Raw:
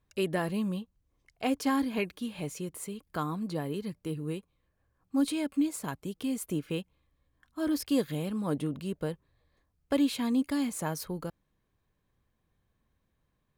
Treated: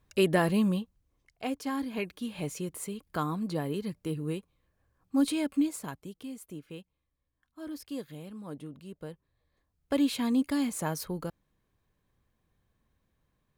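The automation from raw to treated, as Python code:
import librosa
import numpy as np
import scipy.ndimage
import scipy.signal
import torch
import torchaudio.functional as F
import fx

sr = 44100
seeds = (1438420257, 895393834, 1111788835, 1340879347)

y = fx.gain(x, sr, db=fx.line((0.66, 5.5), (1.64, -6.0), (2.43, 1.5), (5.56, 1.5), (6.4, -10.5), (8.84, -10.5), (10.13, 1.0)))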